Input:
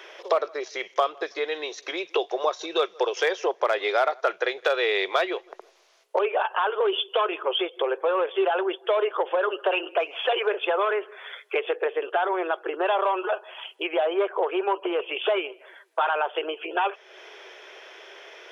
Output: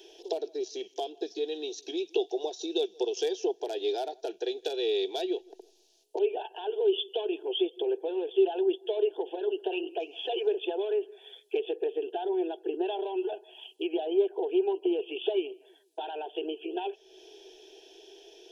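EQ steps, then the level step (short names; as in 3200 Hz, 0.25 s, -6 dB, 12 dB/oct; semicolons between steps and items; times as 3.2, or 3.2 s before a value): Butterworth band-stop 1200 Hz, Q 0.69; low shelf 220 Hz +9.5 dB; fixed phaser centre 560 Hz, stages 6; 0.0 dB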